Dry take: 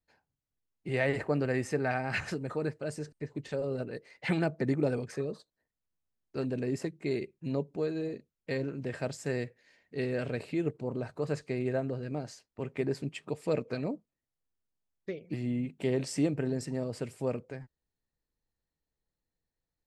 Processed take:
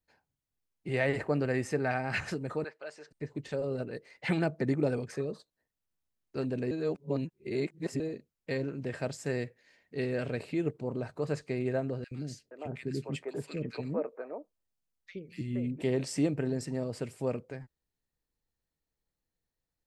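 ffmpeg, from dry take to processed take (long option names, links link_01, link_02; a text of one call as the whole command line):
ffmpeg -i in.wav -filter_complex "[0:a]asettb=1/sr,asplit=3[link_01][link_02][link_03];[link_01]atrim=end=2.644[link_04];[link_02]atrim=start=2.64:end=3.11,asetpts=PTS-STARTPTS,afade=type=in:duration=0.004:curve=qsin,afade=type=out:start_time=0.466:duration=0.004:curve=qsin,highpass=740,lowpass=4200[link_05];[link_03]atrim=start=3.106[link_06];[link_04][link_05]acrossfade=duration=0.004:curve1=hsin:curve2=qsin[link_07];[link_07][link_06]acrossfade=duration=0.004:curve1=qsin:curve2=hsin,asettb=1/sr,asplit=3[link_08][link_09][link_10];[link_08]atrim=end=12.044[link_11];[link_09]atrim=start=12.04:end=15.82,asetpts=PTS-STARTPTS,afade=type=in:duration=0.004:curve=qsin,afade=type=out:start_time=3.776:duration=0.004:curve=qsin,acrossover=split=390|1600[link_12][link_13][link_14];[link_12]adelay=70[link_15];[link_13]adelay=470[link_16];[link_15][link_16][link_14]amix=inputs=3:normalize=0,atrim=end_sample=166698[link_17];[link_10]atrim=start=15.816[link_18];[link_11][link_17]acrossfade=duration=0.004:curve1=hsin:curve2=qsin[link_19];[link_19][link_18]acrossfade=duration=0.004:curve1=qsin:curve2=hsin,asplit=3[link_20][link_21][link_22];[link_20]atrim=end=6.712[link_23];[link_21]atrim=start=6.708:end=8.002,asetpts=PTS-STARTPTS,areverse[link_24];[link_22]atrim=start=7.998[link_25];[link_23][link_24]acrossfade=duration=0.004:curve1=hsin:curve2=hsin[link_26];[link_26][link_25]acrossfade=duration=0.004:curve1=hsin:curve2=hsin" out.wav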